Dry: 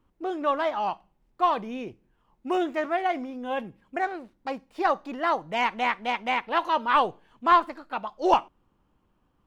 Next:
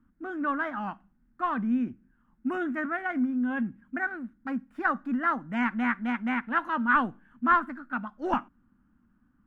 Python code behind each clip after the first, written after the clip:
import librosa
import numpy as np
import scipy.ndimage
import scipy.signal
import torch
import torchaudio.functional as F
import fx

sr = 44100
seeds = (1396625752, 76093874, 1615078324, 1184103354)

y = fx.curve_eq(x, sr, hz=(150.0, 240.0, 420.0, 1000.0, 1500.0, 2400.0, 4400.0, 8700.0), db=(0, 12, -14, -8, 7, -9, -20, -11))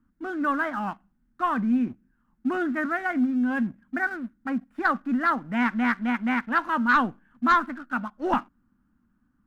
y = fx.leveller(x, sr, passes=1)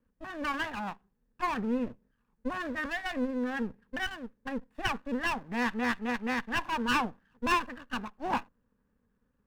y = fx.lower_of_two(x, sr, delay_ms=1.1)
y = F.gain(torch.from_numpy(y), -5.0).numpy()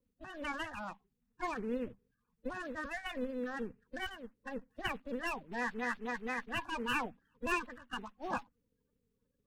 y = fx.spec_quant(x, sr, step_db=30)
y = F.gain(torch.from_numpy(y), -6.0).numpy()